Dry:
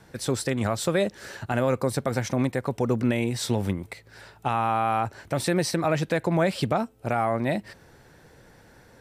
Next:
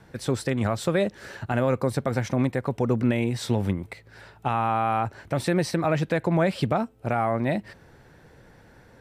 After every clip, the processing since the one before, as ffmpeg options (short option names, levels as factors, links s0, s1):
-af "bass=f=250:g=2,treble=f=4000:g=-6"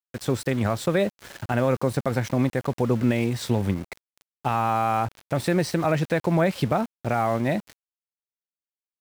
-af "aeval=exprs='val(0)*gte(abs(val(0)),0.0141)':c=same,volume=1.12"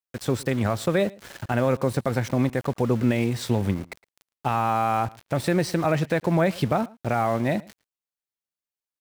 -filter_complex "[0:a]asplit=2[s0][s1];[s1]adelay=110.8,volume=0.0708,highshelf=f=4000:g=-2.49[s2];[s0][s2]amix=inputs=2:normalize=0"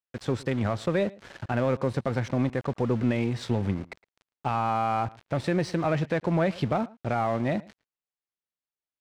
-filter_complex "[0:a]asplit=2[s0][s1];[s1]asoftclip=type=hard:threshold=0.0708,volume=0.398[s2];[s0][s2]amix=inputs=2:normalize=0,adynamicsmooth=sensitivity=1.5:basefreq=4800,volume=0.562"